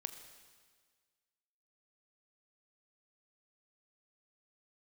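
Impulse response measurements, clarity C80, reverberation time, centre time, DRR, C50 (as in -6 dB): 10.0 dB, 1.6 s, 22 ms, 8.0 dB, 9.5 dB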